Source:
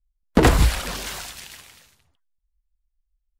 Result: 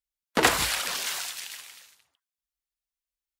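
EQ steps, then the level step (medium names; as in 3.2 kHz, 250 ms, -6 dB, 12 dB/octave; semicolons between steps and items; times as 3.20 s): high-pass 1.4 kHz 6 dB/octave; +2.5 dB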